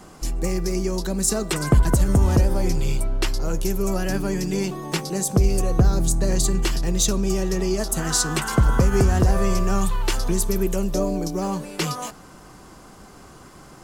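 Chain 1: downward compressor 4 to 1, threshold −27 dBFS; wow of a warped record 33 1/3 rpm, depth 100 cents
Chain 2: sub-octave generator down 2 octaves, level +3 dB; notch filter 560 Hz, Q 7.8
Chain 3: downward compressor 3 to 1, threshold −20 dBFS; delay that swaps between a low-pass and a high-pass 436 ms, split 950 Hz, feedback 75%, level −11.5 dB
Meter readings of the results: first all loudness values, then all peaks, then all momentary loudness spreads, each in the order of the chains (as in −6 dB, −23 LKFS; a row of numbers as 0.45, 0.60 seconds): −31.0, −21.0, −25.0 LKFS; −13.0, −2.5, −10.0 dBFS; 13, 8, 13 LU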